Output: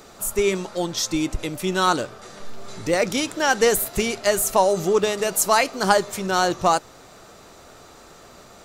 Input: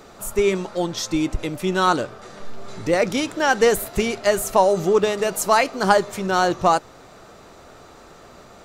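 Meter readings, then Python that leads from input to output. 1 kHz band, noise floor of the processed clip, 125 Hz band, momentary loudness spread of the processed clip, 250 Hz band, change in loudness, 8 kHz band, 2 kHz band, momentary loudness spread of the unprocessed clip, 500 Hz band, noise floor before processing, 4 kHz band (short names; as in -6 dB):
-1.5 dB, -47 dBFS, -2.0 dB, 8 LU, -2.0 dB, -1.0 dB, +4.5 dB, -0.5 dB, 8 LU, -2.0 dB, -46 dBFS, +2.0 dB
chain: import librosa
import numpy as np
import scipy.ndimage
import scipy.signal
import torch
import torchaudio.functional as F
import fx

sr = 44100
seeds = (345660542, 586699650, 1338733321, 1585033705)

y = fx.high_shelf(x, sr, hz=3900.0, db=8.0)
y = y * librosa.db_to_amplitude(-2.0)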